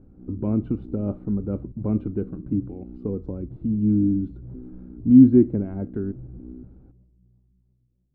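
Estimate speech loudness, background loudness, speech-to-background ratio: -22.0 LUFS, -42.0 LUFS, 20.0 dB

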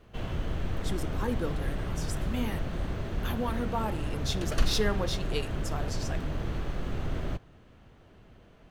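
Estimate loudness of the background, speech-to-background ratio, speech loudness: -35.0 LUFS, -0.5 dB, -35.5 LUFS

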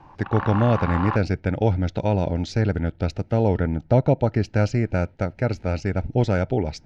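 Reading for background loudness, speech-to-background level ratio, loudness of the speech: -30.5 LUFS, 7.5 dB, -23.0 LUFS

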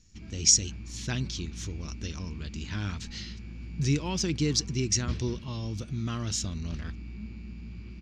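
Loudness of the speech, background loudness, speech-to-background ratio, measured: -29.5 LUFS, -42.5 LUFS, 13.0 dB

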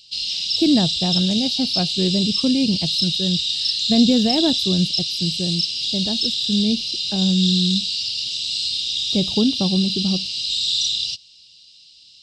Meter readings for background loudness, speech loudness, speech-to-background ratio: -20.5 LUFS, -22.0 LUFS, -1.5 dB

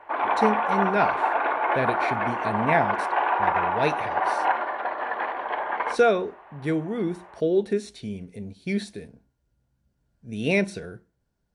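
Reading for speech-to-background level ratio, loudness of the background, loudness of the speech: -2.0 dB, -25.0 LUFS, -27.0 LUFS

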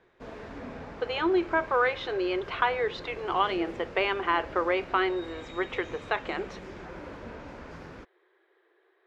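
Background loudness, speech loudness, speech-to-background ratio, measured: -43.5 LUFS, -29.0 LUFS, 14.5 dB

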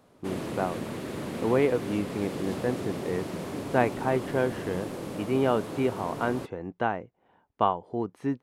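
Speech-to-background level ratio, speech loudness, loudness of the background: 6.5 dB, -29.5 LUFS, -36.0 LUFS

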